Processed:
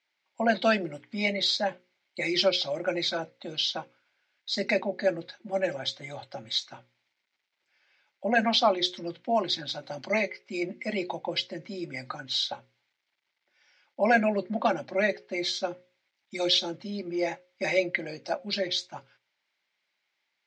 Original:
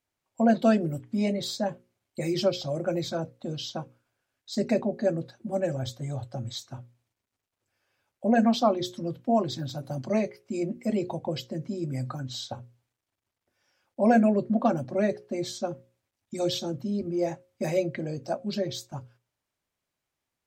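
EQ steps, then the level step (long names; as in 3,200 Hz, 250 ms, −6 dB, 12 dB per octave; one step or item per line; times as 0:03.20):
loudspeaker in its box 140–4,300 Hz, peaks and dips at 190 Hz +7 dB, 350 Hz +6 dB, 570 Hz +5 dB, 850 Hz +7 dB, 1,500 Hz +4 dB, 2,100 Hz +9 dB
spectral tilt +3 dB per octave
high-shelf EQ 2,000 Hz +11.5 dB
−4.0 dB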